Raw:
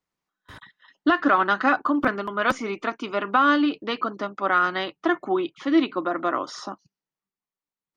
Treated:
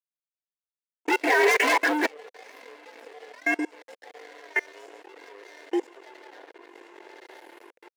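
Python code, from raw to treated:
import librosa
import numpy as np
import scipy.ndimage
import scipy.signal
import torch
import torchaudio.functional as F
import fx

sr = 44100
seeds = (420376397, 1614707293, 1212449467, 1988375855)

y = fx.partial_stretch(x, sr, pct=122)
y = fx.fixed_phaser(y, sr, hz=860.0, stages=8)
y = y + 10.0 ** (-15.5 / 20.0) * np.pad(y, (int(140 * sr / 1000.0), 0))[:len(y)]
y = fx.chopper(y, sr, hz=0.7, depth_pct=65, duty_pct=60)
y = fx.echo_diffused(y, sr, ms=1022, feedback_pct=58, wet_db=-11.5)
y = fx.leveller(y, sr, passes=5, at=(1.08, 2.06))
y = fx.gaussian_blur(y, sr, sigma=3.6, at=(6.27, 6.68))
y = fx.level_steps(y, sr, step_db=21)
y = np.sign(y) * np.maximum(np.abs(y) - 10.0 ** (-43.0 / 20.0), 0.0)
y = fx.highpass_res(y, sr, hz=500.0, q=4.9)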